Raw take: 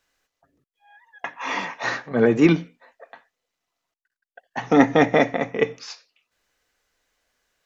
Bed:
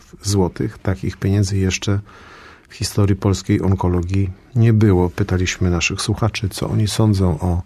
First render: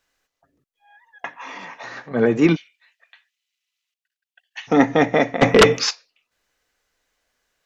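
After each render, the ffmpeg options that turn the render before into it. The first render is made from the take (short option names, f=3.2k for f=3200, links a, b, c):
-filter_complex "[0:a]asplit=3[a][b][c];[a]afade=t=out:st=1.33:d=0.02[d];[b]acompressor=threshold=-31dB:ratio=12:attack=3.2:release=140:knee=1:detection=peak,afade=t=in:st=1.33:d=0.02,afade=t=out:st=1.96:d=0.02[e];[c]afade=t=in:st=1.96:d=0.02[f];[d][e][f]amix=inputs=3:normalize=0,asplit=3[g][h][i];[g]afade=t=out:st=2.55:d=0.02[j];[h]highpass=f=2.7k:t=q:w=2.1,afade=t=in:st=2.55:d=0.02,afade=t=out:st=4.67:d=0.02[k];[i]afade=t=in:st=4.67:d=0.02[l];[j][k][l]amix=inputs=3:normalize=0,asplit=3[m][n][o];[m]afade=t=out:st=5.41:d=0.02[p];[n]aeval=exprs='0.562*sin(PI/2*5.01*val(0)/0.562)':c=same,afade=t=in:st=5.41:d=0.02,afade=t=out:st=5.89:d=0.02[q];[o]afade=t=in:st=5.89:d=0.02[r];[p][q][r]amix=inputs=3:normalize=0"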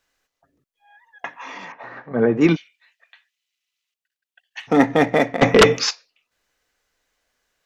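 -filter_complex "[0:a]asettb=1/sr,asplit=3[a][b][c];[a]atrim=end=1.724[d];[b]atrim=start=1.72:end=2.41,asetpts=PTS-STARTPTS,afade=t=in:d=0.004:c=qsin,afade=t=out:st=0.686:d=0.004:c=qsin,lowpass=1.7k[e];[c]atrim=start=2.406[f];[d][e]acrossfade=d=0.004:c1=hsin:c2=qsin[g];[g][f]acrossfade=d=0.004:c1=qsin:c2=hsin,asplit=3[h][i][j];[h]afade=t=out:st=4.59:d=0.02[k];[i]adynamicsmooth=sensitivity=6:basefreq=3.8k,afade=t=in:st=4.59:d=0.02,afade=t=out:st=5.4:d=0.02[l];[j]afade=t=in:st=5.4:d=0.02[m];[k][l][m]amix=inputs=3:normalize=0"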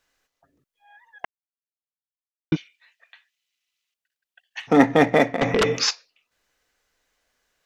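-filter_complex "[0:a]asettb=1/sr,asplit=3[a][b][c];[a]atrim=end=5.284[d];[b]atrim=start=5.28:end=5.8,asetpts=PTS-STARTPTS,afade=t=in:d=0.004:c=qsin,afade=t=out:st=0.516:d=0.004:c=qsin,acompressor=threshold=-18dB:ratio=4:attack=3.2:release=140:knee=1:detection=peak[e];[c]atrim=start=5.796[f];[d][e]acrossfade=d=0.004:c1=hsin:c2=qsin[g];[g][f]acrossfade=d=0.004:c1=qsin:c2=hsin,asplit=3[h][i][j];[h]atrim=end=1.25,asetpts=PTS-STARTPTS,afade=t=out:st=1.246:d=0.004:c=hsin[k];[i]atrim=start=1.25:end=2.52,asetpts=PTS-STARTPTS,volume=0[l];[j]atrim=start=2.52,asetpts=PTS-STARTPTS,afade=t=in:d=0.004:c=hsin[m];[k][l][m]concat=n=3:v=0:a=1"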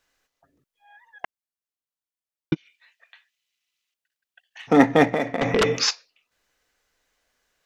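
-filter_complex "[0:a]asplit=3[a][b][c];[a]afade=t=out:st=2.53:d=0.02[d];[b]acompressor=threshold=-42dB:ratio=6:attack=3.2:release=140:knee=1:detection=peak,afade=t=in:st=2.53:d=0.02,afade=t=out:st=4.59:d=0.02[e];[c]afade=t=in:st=4.59:d=0.02[f];[d][e][f]amix=inputs=3:normalize=0,asettb=1/sr,asplit=3[g][h][i];[g]atrim=end=5.104[j];[h]atrim=start=5.1:end=5.52,asetpts=PTS-STARTPTS,afade=t=in:d=0.004:c=qsin,afade=t=out:st=0.416:d=0.004:c=qsin,acompressor=threshold=-18dB:ratio=6:attack=3.2:release=140:knee=1:detection=peak[k];[i]atrim=start=5.516[l];[j][k]acrossfade=d=0.004:c1=hsin:c2=qsin[m];[m][l]acrossfade=d=0.004:c1=qsin:c2=hsin"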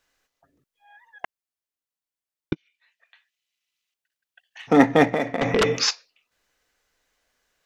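-filter_complex "[0:a]asplit=2[a][b];[a]atrim=end=2.53,asetpts=PTS-STARTPTS,afade=t=out:st=2.526:d=0.004:c=hsin:silence=0.237137[c];[b]atrim=start=2.53,asetpts=PTS-STARTPTS,afade=t=in:d=2.13:c=qsin:silence=0.237137[d];[c][d]concat=n=2:v=0:a=1"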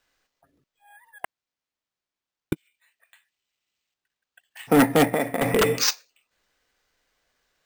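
-af "acrusher=samples=4:mix=1:aa=0.000001,aeval=exprs='0.355*(abs(mod(val(0)/0.355+3,4)-2)-1)':c=same"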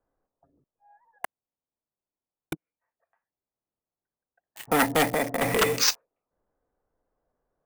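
-filter_complex "[0:a]acrossover=split=580|1000[a][b][c];[a]asoftclip=type=tanh:threshold=-26dB[d];[c]acrusher=bits=5:mix=0:aa=0.000001[e];[d][b][e]amix=inputs=3:normalize=0"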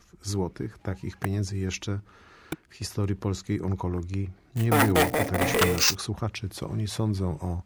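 -filter_complex "[1:a]volume=-12dB[a];[0:a][a]amix=inputs=2:normalize=0"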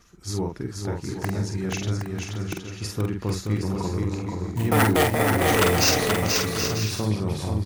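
-filter_complex "[0:a]asplit=2[a][b];[b]adelay=47,volume=-4.5dB[c];[a][c]amix=inputs=2:normalize=0,aecho=1:1:480|768|940.8|1044|1107:0.631|0.398|0.251|0.158|0.1"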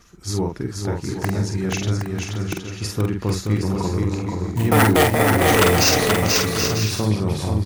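-af "volume=4.5dB,alimiter=limit=-2dB:level=0:latency=1"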